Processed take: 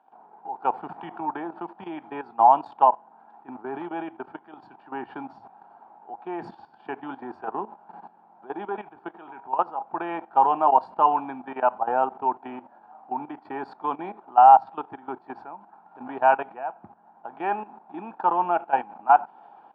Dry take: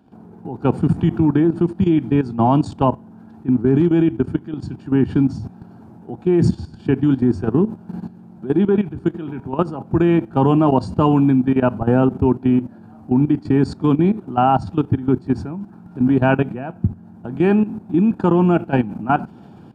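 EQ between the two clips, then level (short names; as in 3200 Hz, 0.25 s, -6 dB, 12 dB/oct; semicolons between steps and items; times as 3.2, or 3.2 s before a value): resonant high-pass 830 Hz, resonance Q 3.8; air absorption 430 m; -4.0 dB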